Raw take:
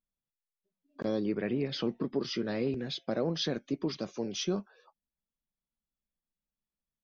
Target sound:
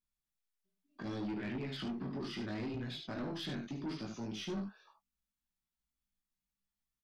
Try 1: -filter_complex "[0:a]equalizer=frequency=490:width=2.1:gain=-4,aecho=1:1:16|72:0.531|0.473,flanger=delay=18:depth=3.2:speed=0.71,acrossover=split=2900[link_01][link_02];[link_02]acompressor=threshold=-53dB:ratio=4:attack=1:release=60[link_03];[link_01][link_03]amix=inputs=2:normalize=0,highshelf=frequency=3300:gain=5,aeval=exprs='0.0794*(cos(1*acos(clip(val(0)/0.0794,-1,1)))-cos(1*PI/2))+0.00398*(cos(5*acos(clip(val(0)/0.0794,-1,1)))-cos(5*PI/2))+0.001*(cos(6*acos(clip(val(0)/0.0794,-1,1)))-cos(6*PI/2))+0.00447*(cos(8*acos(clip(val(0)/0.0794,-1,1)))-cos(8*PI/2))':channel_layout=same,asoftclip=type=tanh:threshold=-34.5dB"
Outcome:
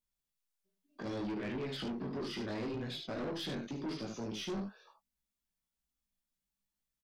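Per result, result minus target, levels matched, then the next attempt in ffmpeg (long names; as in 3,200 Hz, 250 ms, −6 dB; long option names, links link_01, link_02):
500 Hz band +3.0 dB; 8,000 Hz band +2.5 dB
-filter_complex "[0:a]equalizer=frequency=490:width=2.1:gain=-14.5,aecho=1:1:16|72:0.531|0.473,flanger=delay=18:depth=3.2:speed=0.71,acrossover=split=2900[link_01][link_02];[link_02]acompressor=threshold=-53dB:ratio=4:attack=1:release=60[link_03];[link_01][link_03]amix=inputs=2:normalize=0,highshelf=frequency=3300:gain=5,aeval=exprs='0.0794*(cos(1*acos(clip(val(0)/0.0794,-1,1)))-cos(1*PI/2))+0.00398*(cos(5*acos(clip(val(0)/0.0794,-1,1)))-cos(5*PI/2))+0.001*(cos(6*acos(clip(val(0)/0.0794,-1,1)))-cos(6*PI/2))+0.00447*(cos(8*acos(clip(val(0)/0.0794,-1,1)))-cos(8*PI/2))':channel_layout=same,asoftclip=type=tanh:threshold=-34.5dB"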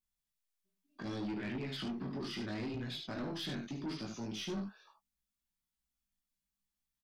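8,000 Hz band +3.0 dB
-filter_complex "[0:a]equalizer=frequency=490:width=2.1:gain=-14.5,aecho=1:1:16|72:0.531|0.473,flanger=delay=18:depth=3.2:speed=0.71,acrossover=split=2900[link_01][link_02];[link_02]acompressor=threshold=-53dB:ratio=4:attack=1:release=60[link_03];[link_01][link_03]amix=inputs=2:normalize=0,aeval=exprs='0.0794*(cos(1*acos(clip(val(0)/0.0794,-1,1)))-cos(1*PI/2))+0.00398*(cos(5*acos(clip(val(0)/0.0794,-1,1)))-cos(5*PI/2))+0.001*(cos(6*acos(clip(val(0)/0.0794,-1,1)))-cos(6*PI/2))+0.00447*(cos(8*acos(clip(val(0)/0.0794,-1,1)))-cos(8*PI/2))':channel_layout=same,asoftclip=type=tanh:threshold=-34.5dB"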